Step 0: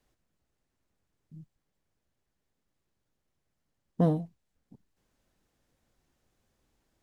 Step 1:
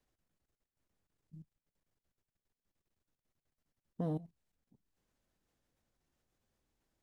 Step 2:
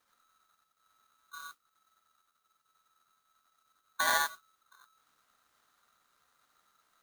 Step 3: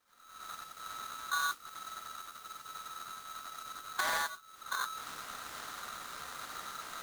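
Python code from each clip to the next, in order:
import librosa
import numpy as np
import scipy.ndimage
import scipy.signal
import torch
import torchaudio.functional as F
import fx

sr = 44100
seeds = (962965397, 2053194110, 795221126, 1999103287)

y1 = fx.level_steps(x, sr, step_db=16)
y1 = y1 * 10.0 ** (-2.5 / 20.0)
y2 = fx.mod_noise(y1, sr, seeds[0], snr_db=15)
y2 = fx.rev_gated(y2, sr, seeds[1], gate_ms=110, shape='rising', drr_db=-0.5)
y2 = y2 * np.sign(np.sin(2.0 * np.pi * 1300.0 * np.arange(len(y2)) / sr))
y2 = y2 * 10.0 ** (6.0 / 20.0)
y3 = fx.recorder_agc(y2, sr, target_db=-20.0, rise_db_per_s=63.0, max_gain_db=30)
y3 = 10.0 ** (-25.0 / 20.0) * np.tanh(y3 / 10.0 ** (-25.0 / 20.0))
y3 = fx.doppler_dist(y3, sr, depth_ms=0.22)
y3 = y3 * 10.0 ** (-2.0 / 20.0)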